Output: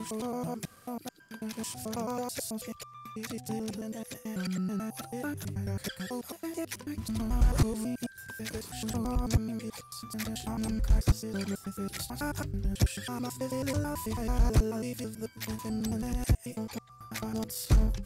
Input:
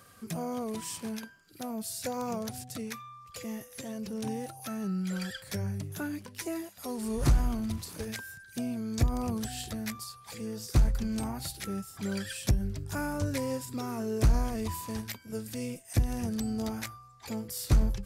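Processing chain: slices in reverse order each 0.109 s, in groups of 8

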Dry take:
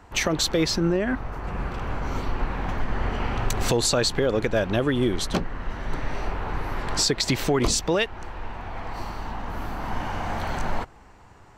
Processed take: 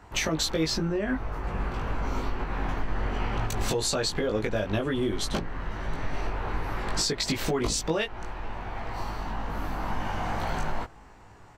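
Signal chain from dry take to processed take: compressor 4:1, threshold -23 dBFS, peak gain reduction 5.5 dB; doubler 19 ms -3 dB; gain -2.5 dB

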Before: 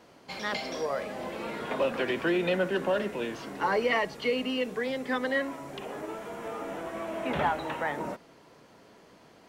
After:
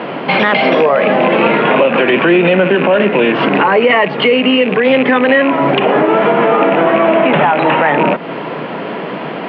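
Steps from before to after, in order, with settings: rattling part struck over -41 dBFS, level -30 dBFS; compressor 4:1, threshold -41 dBFS, peak gain reduction 15.5 dB; elliptic band-pass 150–2900 Hz, stop band 40 dB; maximiser +35.5 dB; gain -1 dB

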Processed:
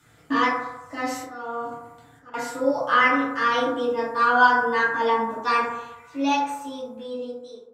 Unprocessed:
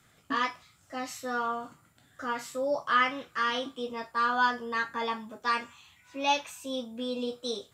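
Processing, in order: ending faded out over 2.03 s; 1.04–2.34 auto swell 0.605 s; FDN reverb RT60 1 s, low-frequency decay 0.8×, high-frequency decay 0.25×, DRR -7.5 dB

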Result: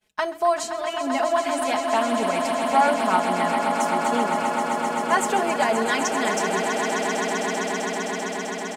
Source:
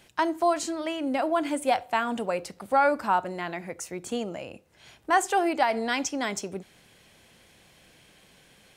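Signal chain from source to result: notches 50/100/150/200/250/300/350/400 Hz; expander -48 dBFS; comb 4.7 ms, depth 86%; swelling echo 0.13 s, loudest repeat 8, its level -9 dB

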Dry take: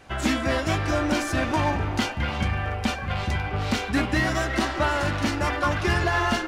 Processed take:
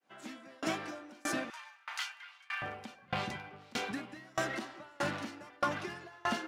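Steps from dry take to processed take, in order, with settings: opening faded in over 0.71 s; HPF 180 Hz 24 dB/oct, from 1.5 s 1200 Hz, from 2.62 s 140 Hz; compressor, threshold -26 dBFS, peak gain reduction 7.5 dB; dB-ramp tremolo decaying 1.6 Hz, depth 30 dB

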